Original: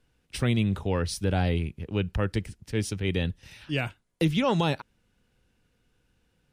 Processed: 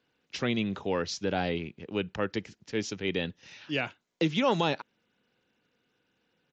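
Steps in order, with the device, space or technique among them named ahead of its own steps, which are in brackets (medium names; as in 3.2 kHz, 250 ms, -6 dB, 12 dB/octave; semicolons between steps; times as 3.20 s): Bluetooth headset (high-pass 230 Hz 12 dB/octave; resampled via 16 kHz; SBC 64 kbps 16 kHz)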